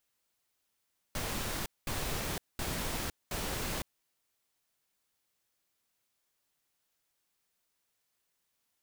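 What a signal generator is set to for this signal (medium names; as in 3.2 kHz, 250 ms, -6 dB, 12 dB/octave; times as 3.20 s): noise bursts pink, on 0.51 s, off 0.21 s, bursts 4, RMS -35.5 dBFS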